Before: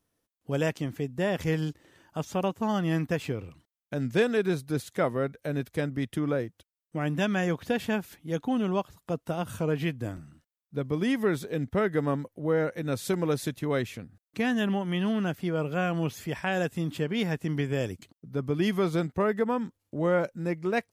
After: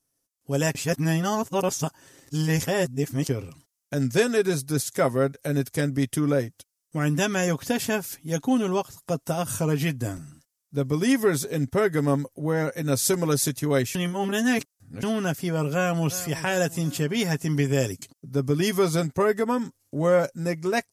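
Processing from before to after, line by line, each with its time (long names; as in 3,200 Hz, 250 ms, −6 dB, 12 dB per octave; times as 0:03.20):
0:00.75–0:03.29: reverse
0:13.95–0:15.03: reverse
0:15.72–0:16.20: delay throw 360 ms, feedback 50%, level −15 dB
whole clip: comb filter 7.4 ms, depth 47%; automatic gain control gain up to 9.5 dB; flat-topped bell 8,000 Hz +12 dB; level −6 dB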